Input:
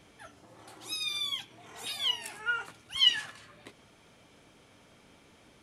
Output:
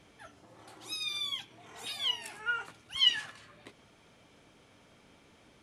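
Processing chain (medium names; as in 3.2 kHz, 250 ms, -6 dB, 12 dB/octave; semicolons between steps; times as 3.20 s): treble shelf 11 kHz -7 dB; trim -1.5 dB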